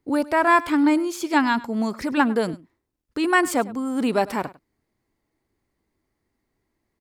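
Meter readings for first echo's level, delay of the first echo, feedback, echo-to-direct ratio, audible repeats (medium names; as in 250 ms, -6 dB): -19.5 dB, 101 ms, no regular repeats, -19.5 dB, 1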